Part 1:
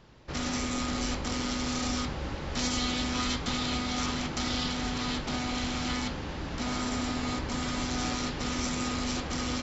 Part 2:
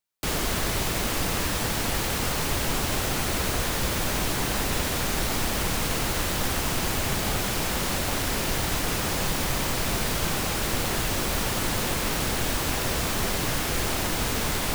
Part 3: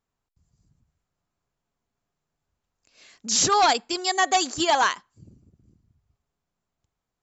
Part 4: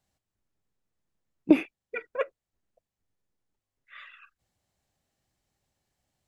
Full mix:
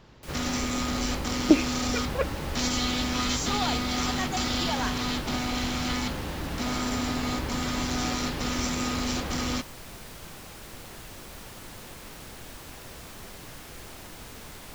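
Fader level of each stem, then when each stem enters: +2.5, −17.0, −12.5, +0.5 decibels; 0.00, 0.00, 0.00, 0.00 seconds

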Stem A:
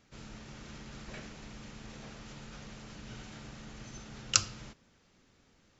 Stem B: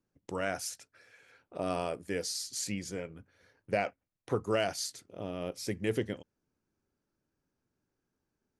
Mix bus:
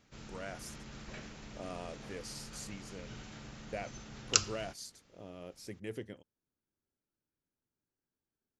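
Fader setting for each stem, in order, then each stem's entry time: −1.5, −10.5 decibels; 0.00, 0.00 seconds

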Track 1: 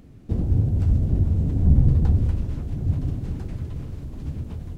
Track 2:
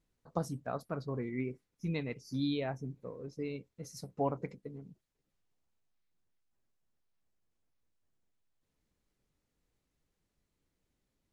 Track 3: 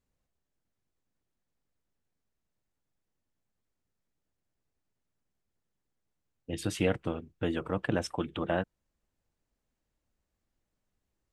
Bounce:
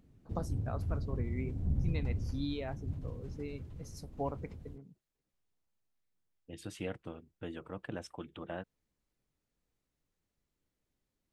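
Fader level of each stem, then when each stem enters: −16.0, −4.0, −11.5 decibels; 0.00, 0.00, 0.00 seconds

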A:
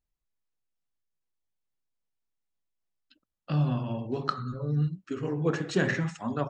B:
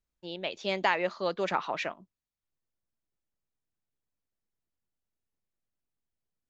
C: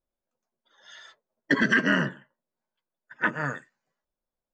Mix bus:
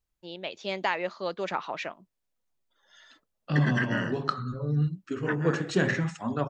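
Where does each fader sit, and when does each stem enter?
+1.0, −1.5, −8.0 decibels; 0.00, 0.00, 2.05 seconds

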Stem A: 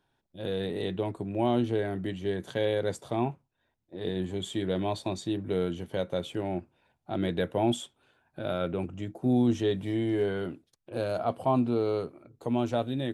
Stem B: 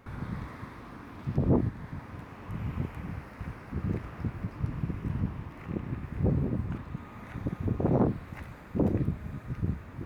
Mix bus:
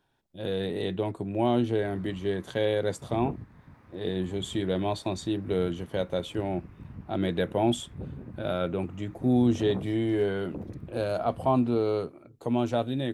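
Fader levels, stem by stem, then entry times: +1.5, −12.0 decibels; 0.00, 1.75 seconds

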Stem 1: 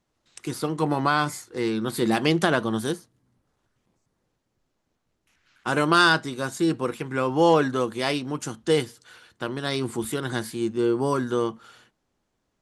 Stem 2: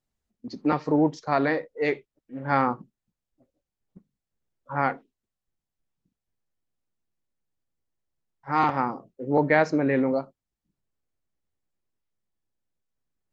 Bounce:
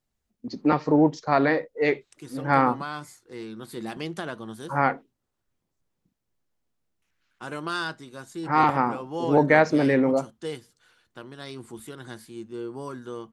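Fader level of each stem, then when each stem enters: −12.0, +2.5 decibels; 1.75, 0.00 seconds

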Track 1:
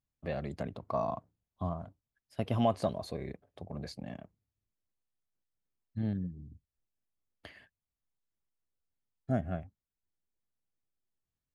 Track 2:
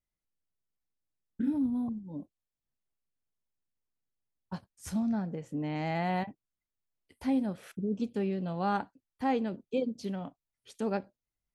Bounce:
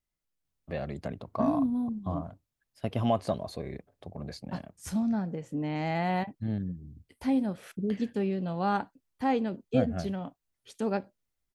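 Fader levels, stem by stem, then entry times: +1.5, +2.0 decibels; 0.45, 0.00 seconds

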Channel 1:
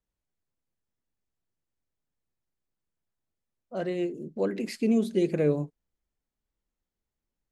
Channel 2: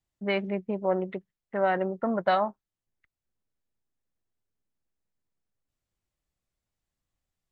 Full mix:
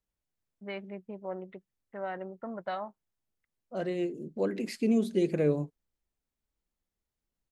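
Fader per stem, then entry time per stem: −2.0, −11.5 decibels; 0.00, 0.40 seconds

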